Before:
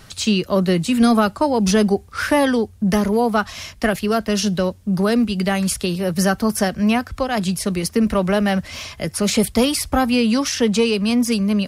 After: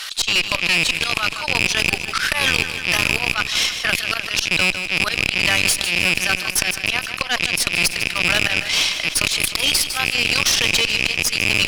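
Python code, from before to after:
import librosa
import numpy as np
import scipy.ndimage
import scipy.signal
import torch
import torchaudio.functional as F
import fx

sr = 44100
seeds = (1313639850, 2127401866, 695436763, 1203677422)

y = fx.rattle_buzz(x, sr, strikes_db=-27.0, level_db=-12.0)
y = scipy.signal.sosfilt(scipy.signal.butter(2, 1400.0, 'highpass', fs=sr, output='sos'), y)
y = fx.peak_eq(y, sr, hz=3400.0, db=8.0, octaves=1.3)
y = fx.transient(y, sr, attack_db=3, sustain_db=-12)
y = fx.rider(y, sr, range_db=4, speed_s=0.5)
y = fx.auto_swell(y, sr, attack_ms=171.0)
y = fx.tube_stage(y, sr, drive_db=18.0, bias=0.65)
y = fx.echo_feedback(y, sr, ms=154, feedback_pct=54, wet_db=-17.0)
y = fx.env_flatten(y, sr, amount_pct=50)
y = y * 10.0 ** (7.0 / 20.0)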